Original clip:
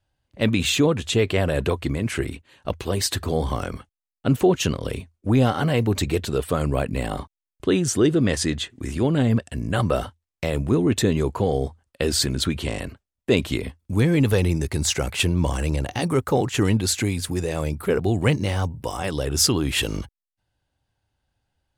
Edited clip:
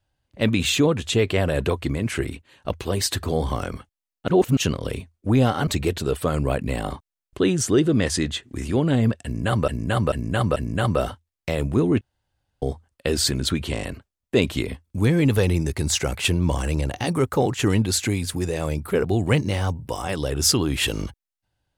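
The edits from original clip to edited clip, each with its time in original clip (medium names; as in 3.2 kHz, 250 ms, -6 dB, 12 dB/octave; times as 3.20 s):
4.28–4.57 s: reverse
5.67–5.94 s: delete
9.51–9.95 s: loop, 4 plays
10.96–11.57 s: room tone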